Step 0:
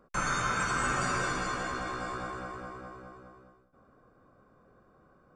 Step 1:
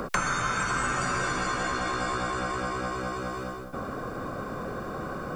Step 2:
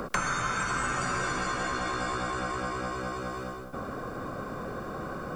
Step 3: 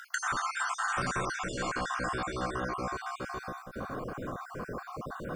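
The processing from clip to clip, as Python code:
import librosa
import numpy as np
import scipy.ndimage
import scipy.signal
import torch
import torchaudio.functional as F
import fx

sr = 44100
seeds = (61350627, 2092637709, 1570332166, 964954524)

y1 = fx.band_squash(x, sr, depth_pct=100)
y1 = y1 * 10.0 ** (3.0 / 20.0)
y2 = y1 + 10.0 ** (-19.5 / 20.0) * np.pad(y1, (int(103 * sr / 1000.0), 0))[:len(y1)]
y2 = y2 * 10.0 ** (-2.0 / 20.0)
y3 = fx.spec_dropout(y2, sr, seeds[0], share_pct=42)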